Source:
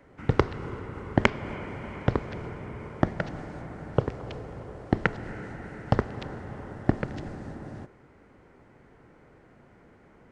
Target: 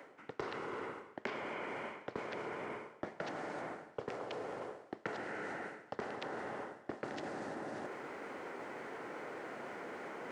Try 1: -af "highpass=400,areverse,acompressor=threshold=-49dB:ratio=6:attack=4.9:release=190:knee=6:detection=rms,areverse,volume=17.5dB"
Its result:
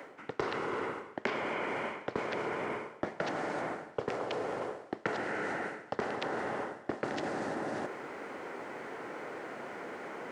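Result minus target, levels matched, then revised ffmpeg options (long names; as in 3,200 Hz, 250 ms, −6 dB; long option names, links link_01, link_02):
downward compressor: peak gain reduction −7 dB
-af "highpass=400,areverse,acompressor=threshold=-57.5dB:ratio=6:attack=4.9:release=190:knee=6:detection=rms,areverse,volume=17.5dB"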